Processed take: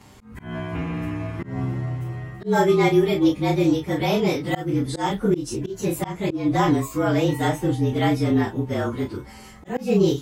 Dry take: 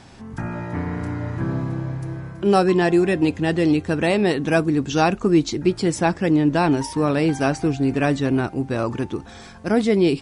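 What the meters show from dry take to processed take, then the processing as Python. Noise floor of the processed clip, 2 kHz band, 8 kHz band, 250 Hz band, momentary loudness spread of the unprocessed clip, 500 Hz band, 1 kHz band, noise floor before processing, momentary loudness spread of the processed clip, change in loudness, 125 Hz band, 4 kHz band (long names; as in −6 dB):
−43 dBFS, −4.0 dB, −2.0 dB, −2.5 dB, 12 LU, −2.0 dB, −2.0 dB, −41 dBFS, 12 LU, −2.0 dB, −0.5 dB, −1.0 dB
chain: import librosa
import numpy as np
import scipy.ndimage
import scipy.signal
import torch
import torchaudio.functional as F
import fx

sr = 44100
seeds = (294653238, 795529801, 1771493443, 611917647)

y = fx.partial_stretch(x, sr, pct=111)
y = fx.doubler(y, sr, ms=31.0, db=-5)
y = fx.auto_swell(y, sr, attack_ms=175.0)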